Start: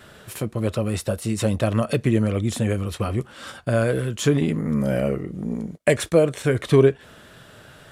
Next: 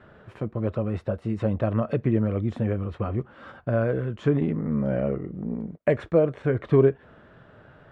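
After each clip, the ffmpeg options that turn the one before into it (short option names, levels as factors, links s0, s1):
-af "lowpass=1500,volume=0.708"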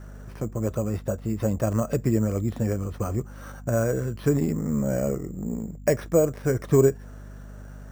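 -af "aeval=exprs='val(0)+0.01*(sin(2*PI*50*n/s)+sin(2*PI*2*50*n/s)/2+sin(2*PI*3*50*n/s)/3+sin(2*PI*4*50*n/s)/4+sin(2*PI*5*50*n/s)/5)':c=same,acrusher=samples=6:mix=1:aa=0.000001"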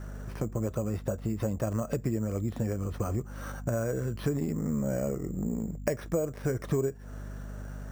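-af "acompressor=threshold=0.0355:ratio=4,volume=1.19"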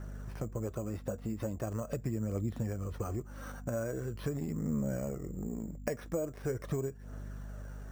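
-af "aphaser=in_gain=1:out_gain=1:delay=4.3:decay=0.29:speed=0.42:type=triangular,volume=0.531"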